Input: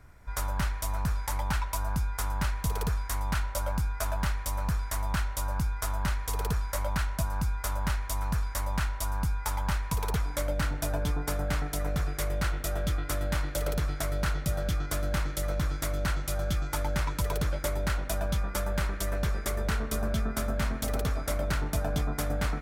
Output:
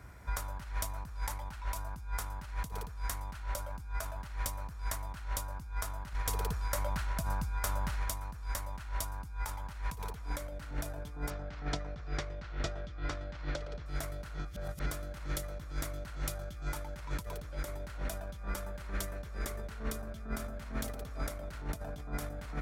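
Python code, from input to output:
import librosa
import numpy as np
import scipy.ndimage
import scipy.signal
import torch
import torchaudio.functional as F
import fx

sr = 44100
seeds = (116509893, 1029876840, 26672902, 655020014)

y = fx.over_compress(x, sr, threshold_db=-35.0, ratio=-1.0, at=(6.13, 8.06))
y = fx.lowpass(y, sr, hz=5500.0, slope=24, at=(11.3, 13.86))
y = fx.edit(y, sr, fx.reverse_span(start_s=14.39, length_s=0.47), tone=tone)
y = scipy.signal.sosfilt(scipy.signal.butter(4, 40.0, 'highpass', fs=sr, output='sos'), y)
y = fx.over_compress(y, sr, threshold_db=-34.0, ratio=-0.5)
y = y * 10.0 ** (-2.0 / 20.0)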